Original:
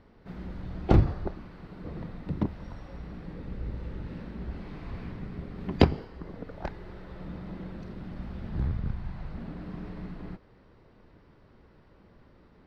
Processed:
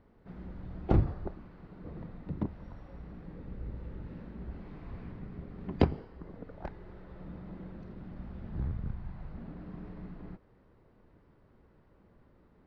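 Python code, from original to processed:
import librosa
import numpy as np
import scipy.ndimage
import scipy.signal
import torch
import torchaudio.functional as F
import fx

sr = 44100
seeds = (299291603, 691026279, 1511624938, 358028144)

y = fx.high_shelf(x, sr, hz=2900.0, db=-11.0)
y = F.gain(torch.from_numpy(y), -5.0).numpy()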